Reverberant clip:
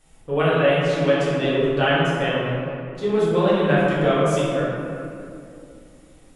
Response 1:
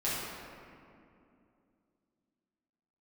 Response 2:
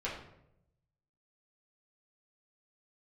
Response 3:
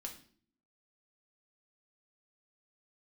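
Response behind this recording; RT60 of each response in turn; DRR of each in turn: 1; 2.6 s, 0.80 s, 0.50 s; -10.5 dB, -7.5 dB, 1.0 dB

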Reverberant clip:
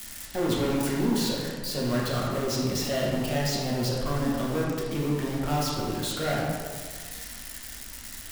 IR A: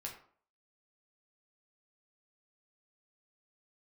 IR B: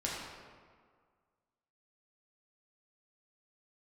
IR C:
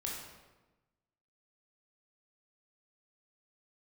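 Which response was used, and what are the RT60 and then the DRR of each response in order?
B; 0.50 s, 1.8 s, 1.1 s; -1.5 dB, -5.5 dB, -3.0 dB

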